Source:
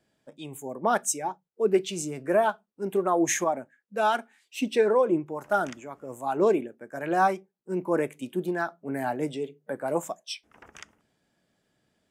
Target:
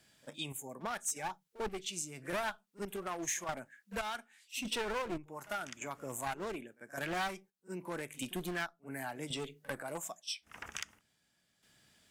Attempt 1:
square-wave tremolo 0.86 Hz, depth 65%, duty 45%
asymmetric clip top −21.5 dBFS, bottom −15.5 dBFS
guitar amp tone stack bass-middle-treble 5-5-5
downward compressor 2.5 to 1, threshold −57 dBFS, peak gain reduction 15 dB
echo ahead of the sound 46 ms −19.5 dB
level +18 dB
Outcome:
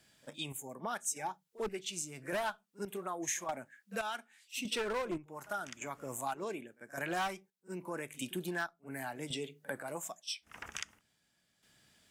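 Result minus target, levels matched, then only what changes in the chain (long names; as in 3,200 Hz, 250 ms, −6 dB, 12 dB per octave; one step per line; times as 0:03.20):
asymmetric clip: distortion −6 dB
change: asymmetric clip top −31 dBFS, bottom −15.5 dBFS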